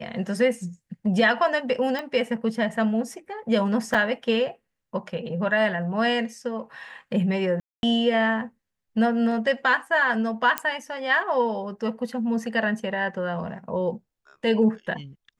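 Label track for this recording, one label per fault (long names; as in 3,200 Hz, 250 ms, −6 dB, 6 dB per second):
1.990000	1.990000	click −18 dBFS
3.940000	3.940000	drop-out 4.7 ms
7.600000	7.830000	drop-out 231 ms
10.580000	10.580000	click −7 dBFS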